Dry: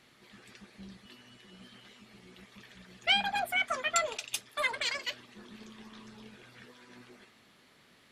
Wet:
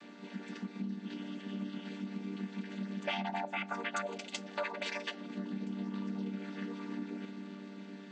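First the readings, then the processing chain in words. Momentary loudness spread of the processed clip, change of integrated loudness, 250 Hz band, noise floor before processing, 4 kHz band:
8 LU, −9.5 dB, +13.5 dB, −62 dBFS, −11.0 dB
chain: channel vocoder with a chord as carrier minor triad, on G3
downward compressor 4 to 1, threshold −46 dBFS, peak gain reduction 17.5 dB
delay with a low-pass on its return 398 ms, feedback 72%, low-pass 590 Hz, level −12.5 dB
level +9 dB

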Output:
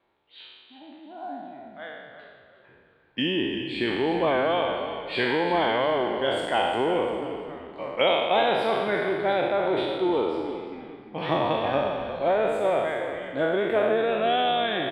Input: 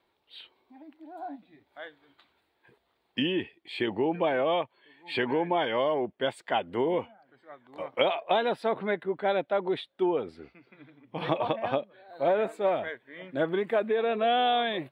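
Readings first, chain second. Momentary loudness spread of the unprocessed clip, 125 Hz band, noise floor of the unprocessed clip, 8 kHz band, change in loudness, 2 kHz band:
17 LU, +4.0 dB, −74 dBFS, can't be measured, +3.5 dB, +5.5 dB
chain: peak hold with a decay on every bin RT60 1.56 s
echo with shifted repeats 350 ms, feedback 36%, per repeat −49 Hz, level −10.5 dB
low-pass that shuts in the quiet parts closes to 2,800 Hz, open at −24 dBFS

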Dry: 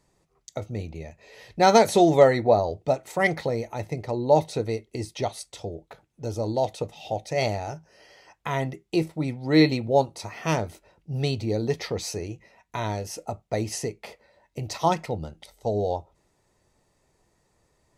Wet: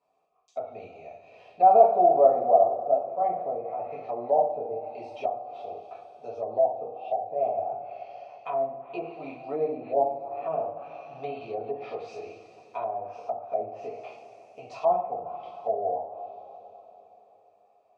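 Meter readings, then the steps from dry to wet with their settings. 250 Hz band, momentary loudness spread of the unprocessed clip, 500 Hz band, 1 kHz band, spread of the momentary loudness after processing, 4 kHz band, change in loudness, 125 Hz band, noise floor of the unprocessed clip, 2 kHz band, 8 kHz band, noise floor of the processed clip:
−15.5 dB, 19 LU, −1.0 dB, +2.5 dB, 21 LU, below −20 dB, −1.5 dB, −23.0 dB, −69 dBFS, −18.5 dB, below −30 dB, −62 dBFS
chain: formant filter a
coupled-rooms reverb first 0.53 s, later 4 s, from −18 dB, DRR −8 dB
treble cut that deepens with the level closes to 720 Hz, closed at −26.5 dBFS

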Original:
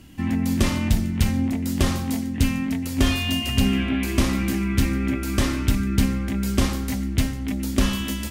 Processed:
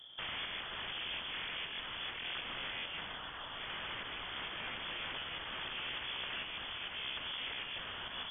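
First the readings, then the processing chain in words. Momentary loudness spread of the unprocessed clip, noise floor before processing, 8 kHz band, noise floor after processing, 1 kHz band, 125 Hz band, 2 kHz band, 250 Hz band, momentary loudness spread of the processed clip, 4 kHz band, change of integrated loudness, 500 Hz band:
4 LU, −29 dBFS, below −40 dB, −46 dBFS, −10.5 dB, −34.5 dB, −9.0 dB, −35.5 dB, 3 LU, −6.5 dB, −16.5 dB, −19.0 dB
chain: lower of the sound and its delayed copy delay 0.5 ms
downward compressor 3 to 1, threshold −22 dBFS, peak gain reduction 7 dB
wrap-around overflow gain 27.5 dB
voice inversion scrambler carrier 3,400 Hz
level −8 dB
AAC 64 kbit/s 48,000 Hz

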